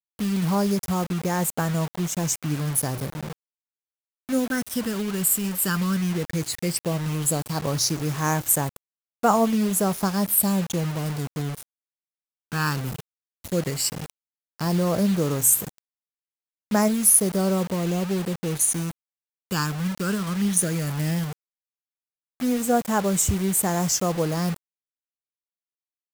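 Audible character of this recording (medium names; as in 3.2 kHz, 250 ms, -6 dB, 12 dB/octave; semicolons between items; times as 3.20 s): phasing stages 12, 0.14 Hz, lowest notch 660–4300 Hz; a quantiser's noise floor 6-bit, dither none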